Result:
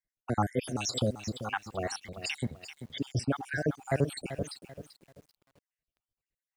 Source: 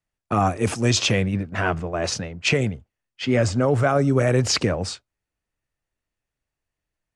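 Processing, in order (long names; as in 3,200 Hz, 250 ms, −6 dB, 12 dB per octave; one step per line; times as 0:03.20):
time-frequency cells dropped at random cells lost 67%
speed change +9%
feedback echo at a low word length 388 ms, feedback 35%, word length 8 bits, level −11 dB
level −6 dB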